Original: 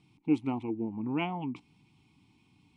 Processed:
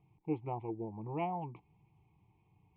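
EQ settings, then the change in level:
low-pass filter 2,100 Hz 24 dB per octave
high-frequency loss of the air 170 metres
phaser with its sweep stopped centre 620 Hz, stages 4
+2.0 dB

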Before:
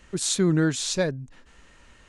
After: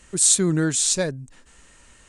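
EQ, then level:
parametric band 8,600 Hz +14.5 dB 0.86 octaves
0.0 dB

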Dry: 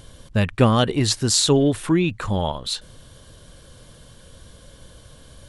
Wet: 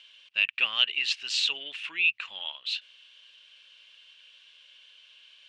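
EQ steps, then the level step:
resonant band-pass 2,700 Hz, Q 7.8
high-frequency loss of the air 150 metres
spectral tilt +4.5 dB per octave
+7.0 dB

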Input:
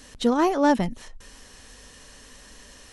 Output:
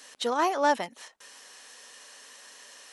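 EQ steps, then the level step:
high-pass filter 600 Hz 12 dB per octave
0.0 dB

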